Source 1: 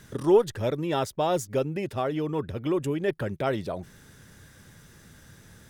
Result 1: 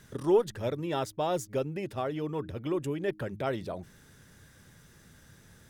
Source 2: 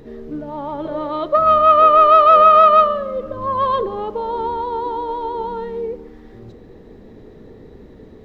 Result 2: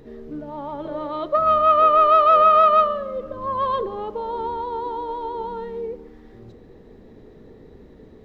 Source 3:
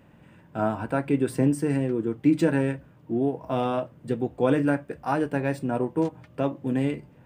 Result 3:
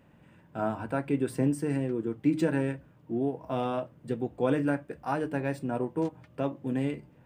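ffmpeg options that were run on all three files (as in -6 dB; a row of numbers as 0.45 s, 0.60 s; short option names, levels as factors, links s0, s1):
-af "bandreject=f=104.5:t=h:w=4,bandreject=f=209:t=h:w=4,bandreject=f=313.5:t=h:w=4,volume=0.596"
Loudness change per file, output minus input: -4.5 LU, -4.5 LU, -4.5 LU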